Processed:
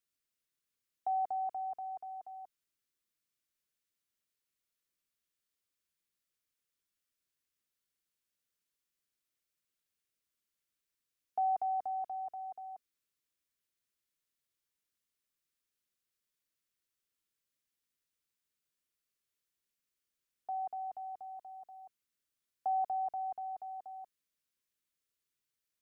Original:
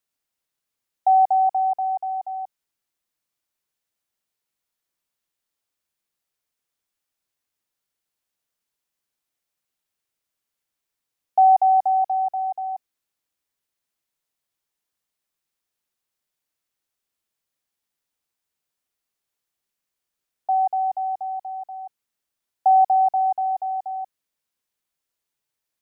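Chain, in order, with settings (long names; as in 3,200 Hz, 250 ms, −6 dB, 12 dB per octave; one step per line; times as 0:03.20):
parametric band 790 Hz −13 dB 0.58 octaves
level −5 dB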